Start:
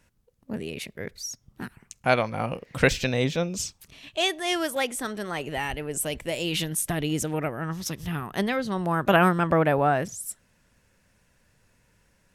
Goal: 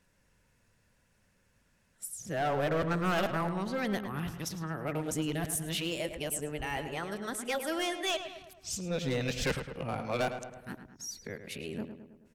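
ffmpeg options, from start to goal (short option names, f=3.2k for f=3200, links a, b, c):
-filter_complex "[0:a]areverse,volume=20dB,asoftclip=hard,volume=-20dB,asplit=2[a][b];[b]adelay=107,lowpass=f=2.9k:p=1,volume=-9dB,asplit=2[c][d];[d]adelay=107,lowpass=f=2.9k:p=1,volume=0.55,asplit=2[e][f];[f]adelay=107,lowpass=f=2.9k:p=1,volume=0.55,asplit=2[g][h];[h]adelay=107,lowpass=f=2.9k:p=1,volume=0.55,asplit=2[i][j];[j]adelay=107,lowpass=f=2.9k:p=1,volume=0.55,asplit=2[k][l];[l]adelay=107,lowpass=f=2.9k:p=1,volume=0.55[m];[a][c][e][g][i][k][m]amix=inputs=7:normalize=0,volume=-6dB"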